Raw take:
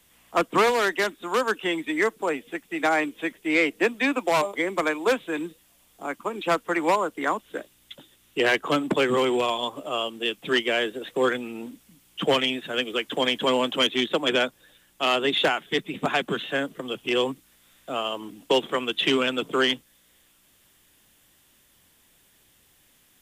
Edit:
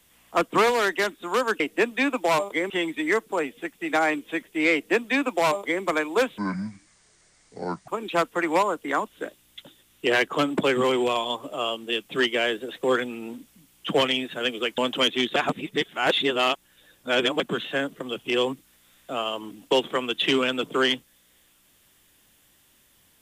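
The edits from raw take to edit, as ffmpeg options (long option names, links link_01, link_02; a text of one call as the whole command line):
ffmpeg -i in.wav -filter_complex "[0:a]asplit=8[link_01][link_02][link_03][link_04][link_05][link_06][link_07][link_08];[link_01]atrim=end=1.602[link_09];[link_02]atrim=start=3.628:end=4.732[link_10];[link_03]atrim=start=1.598:end=5.284[link_11];[link_04]atrim=start=5.28:end=6.21,asetpts=PTS-STARTPTS,asetrate=27342,aresample=44100[link_12];[link_05]atrim=start=6.206:end=13.112[link_13];[link_06]atrim=start=13.568:end=14.152[link_14];[link_07]atrim=start=14.148:end=16.192,asetpts=PTS-STARTPTS,areverse[link_15];[link_08]atrim=start=16.188[link_16];[link_09][link_10]acrossfade=duration=0.004:curve1=hsin:curve2=hsin[link_17];[link_17][link_11]acrossfade=duration=0.004:curve1=hsin:curve2=hsin[link_18];[link_18][link_12]acrossfade=duration=0.004:curve1=hsin:curve2=hsin[link_19];[link_19][link_13]acrossfade=duration=0.004:curve1=hsin:curve2=hsin[link_20];[link_20][link_14]acrossfade=duration=0.004:curve1=hsin:curve2=hsin[link_21];[link_21][link_15]acrossfade=duration=0.004:curve1=hsin:curve2=hsin[link_22];[link_22][link_16]acrossfade=duration=0.004:curve1=hsin:curve2=hsin" out.wav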